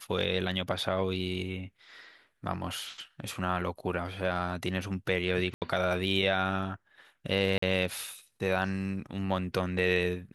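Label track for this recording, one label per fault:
5.540000	5.620000	dropout 78 ms
7.580000	7.620000	dropout 44 ms

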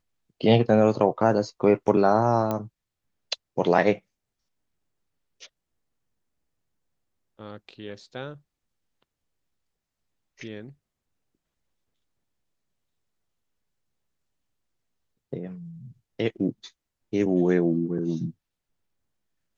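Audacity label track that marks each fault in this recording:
2.510000	2.510000	pop -14 dBFS

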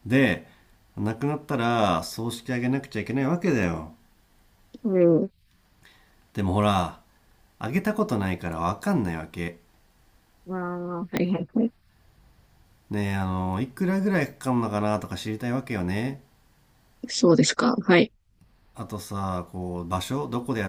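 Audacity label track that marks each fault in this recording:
3.630000	3.630000	dropout 2.4 ms
11.170000	11.170000	pop -10 dBFS

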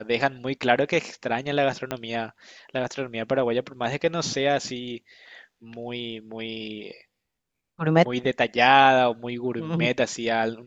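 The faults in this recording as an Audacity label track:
1.910000	1.910000	pop -13 dBFS

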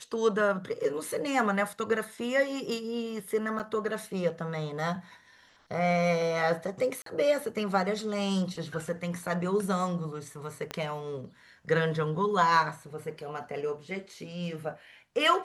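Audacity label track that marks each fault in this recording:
3.590000	3.600000	dropout 7.3 ms
7.020000	7.060000	dropout 43 ms
10.710000	10.710000	pop -19 dBFS

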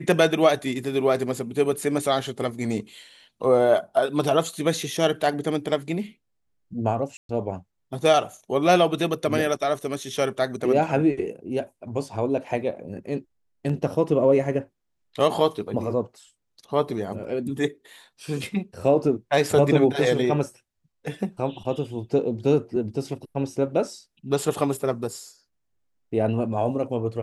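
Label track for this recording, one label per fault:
7.170000	7.290000	dropout 122 ms

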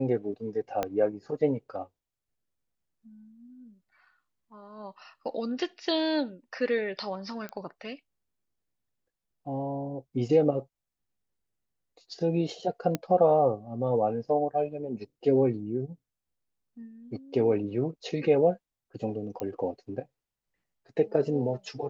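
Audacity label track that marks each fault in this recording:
0.830000	0.830000	pop -15 dBFS
7.490000	7.490000	pop -23 dBFS
12.950000	12.950000	pop -14 dBFS
19.400000	19.400000	pop -20 dBFS

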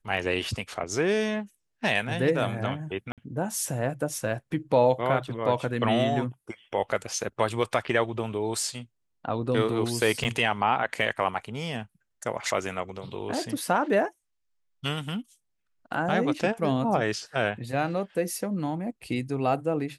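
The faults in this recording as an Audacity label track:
3.120000	3.180000	dropout 57 ms
10.240000	10.250000	dropout 7.4 ms

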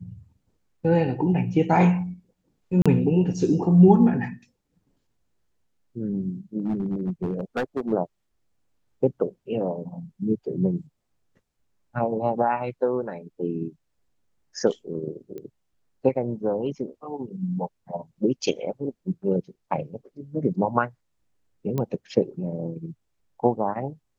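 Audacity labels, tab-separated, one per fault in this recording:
2.820000	2.860000	dropout 36 ms
6.600000	7.930000	clipped -21.5 dBFS
15.380000	15.380000	pop -26 dBFS
21.780000	21.780000	pop -15 dBFS

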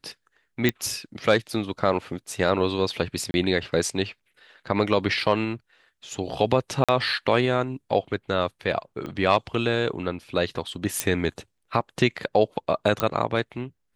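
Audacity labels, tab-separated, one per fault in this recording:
0.690000	0.690000	pop -7 dBFS
3.310000	3.340000	dropout 31 ms
6.840000	6.890000	dropout 46 ms
9.060000	9.060000	pop -21 dBFS
11.000000	11.000000	pop -6 dBFS
13.000000	13.000000	pop -8 dBFS

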